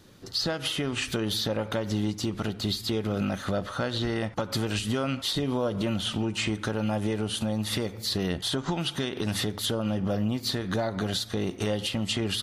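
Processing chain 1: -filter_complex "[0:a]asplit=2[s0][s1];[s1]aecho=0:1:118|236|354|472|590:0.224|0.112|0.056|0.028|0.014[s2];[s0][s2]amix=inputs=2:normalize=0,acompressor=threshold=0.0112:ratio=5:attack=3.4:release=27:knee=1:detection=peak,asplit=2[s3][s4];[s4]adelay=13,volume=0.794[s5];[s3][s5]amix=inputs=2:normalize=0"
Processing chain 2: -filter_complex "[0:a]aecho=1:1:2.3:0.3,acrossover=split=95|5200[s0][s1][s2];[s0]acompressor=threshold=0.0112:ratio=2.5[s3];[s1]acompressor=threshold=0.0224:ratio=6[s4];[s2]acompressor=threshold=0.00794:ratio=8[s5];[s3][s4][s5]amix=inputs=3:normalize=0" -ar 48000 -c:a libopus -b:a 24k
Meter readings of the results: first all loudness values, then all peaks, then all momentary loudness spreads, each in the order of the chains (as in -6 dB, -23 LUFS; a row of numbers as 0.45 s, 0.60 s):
-37.5 LUFS, -35.0 LUFS; -23.0 dBFS, -19.5 dBFS; 3 LU, 2 LU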